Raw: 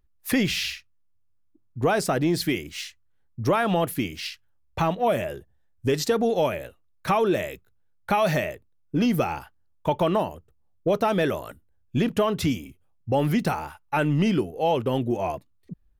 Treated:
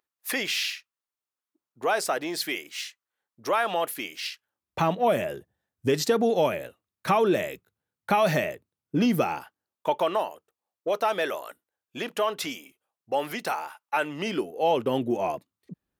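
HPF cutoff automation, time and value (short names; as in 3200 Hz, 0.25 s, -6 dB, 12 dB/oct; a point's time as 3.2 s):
4.23 s 560 Hz
4.85 s 140 Hz
9.07 s 140 Hz
10.18 s 560 Hz
14.03 s 560 Hz
14.9 s 190 Hz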